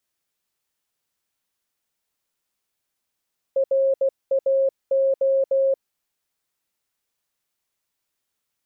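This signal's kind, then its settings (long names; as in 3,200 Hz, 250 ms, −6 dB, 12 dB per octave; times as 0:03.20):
Morse code "RAO" 16 words per minute 540 Hz −16 dBFS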